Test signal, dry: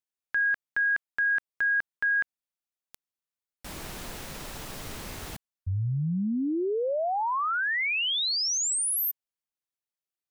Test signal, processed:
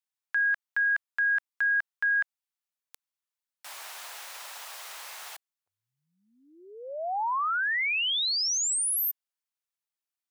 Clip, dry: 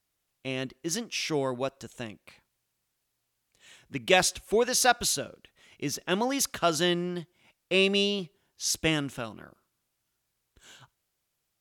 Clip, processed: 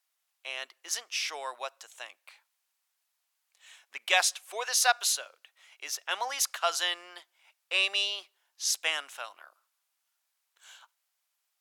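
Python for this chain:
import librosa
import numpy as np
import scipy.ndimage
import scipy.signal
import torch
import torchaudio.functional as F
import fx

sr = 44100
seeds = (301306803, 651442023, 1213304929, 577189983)

y = scipy.signal.sosfilt(scipy.signal.butter(4, 730.0, 'highpass', fs=sr, output='sos'), x)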